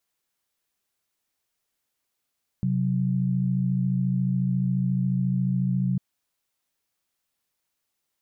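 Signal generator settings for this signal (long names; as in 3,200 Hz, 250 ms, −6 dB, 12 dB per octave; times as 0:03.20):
held notes C3/F#3 sine, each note −24 dBFS 3.35 s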